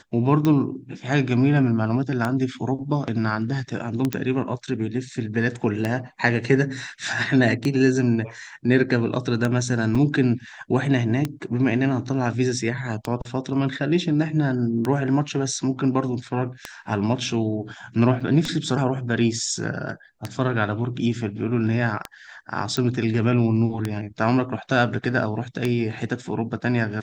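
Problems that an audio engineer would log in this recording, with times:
scratch tick 33 1/3 rpm −10 dBFS
0:04.13: click −9 dBFS
0:09.95: drop-out 4.4 ms
0:18.20–0:18.21: drop-out 5.5 ms
0:22.77: click −13 dBFS

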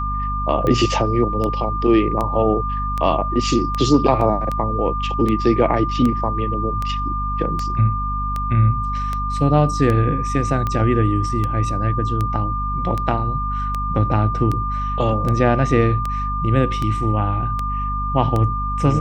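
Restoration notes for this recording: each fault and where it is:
mains hum 50 Hz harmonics 5 −25 dBFS
scratch tick 78 rpm −11 dBFS
whistle 1,200 Hz −23 dBFS
0:04.21: drop-out 2.7 ms

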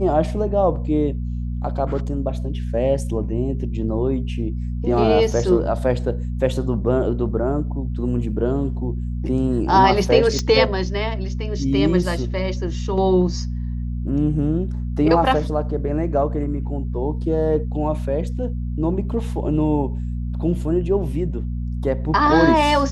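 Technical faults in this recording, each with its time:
mains hum 60 Hz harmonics 4 −25 dBFS
0:10.39: click −9 dBFS

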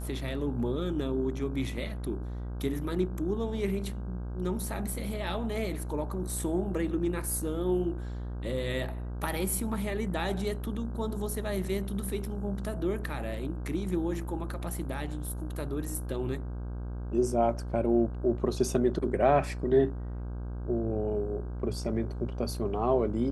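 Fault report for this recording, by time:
mains buzz 60 Hz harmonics 27 −36 dBFS

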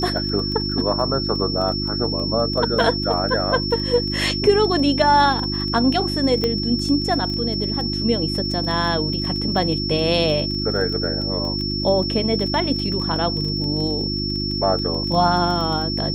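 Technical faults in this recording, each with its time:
surface crackle 17 per second −26 dBFS
mains hum 50 Hz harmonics 7 −26 dBFS
whistle 5,400 Hz −25 dBFS
0:06.44: click −9 dBFS

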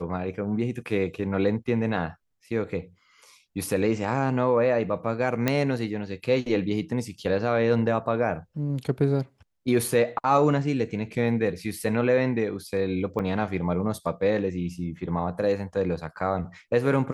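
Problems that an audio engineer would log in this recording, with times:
0:05.48: click −8 dBFS
0:13.19–0:13.20: drop-out 6.8 ms

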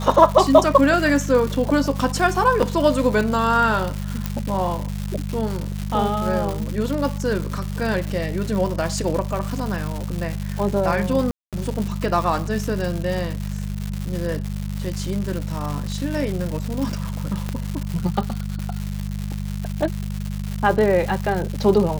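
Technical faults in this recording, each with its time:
surface crackle 280 per second −25 dBFS
mains hum 50 Hz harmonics 4 −27 dBFS
0:02.62–0:02.63: drop-out 6.2 ms
0:04.26: click
0:11.31–0:11.53: drop-out 217 ms
0:17.49: click −13 dBFS

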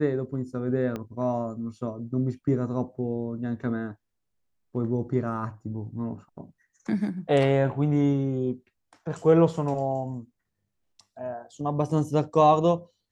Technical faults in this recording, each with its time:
0:00.96: click −20 dBFS

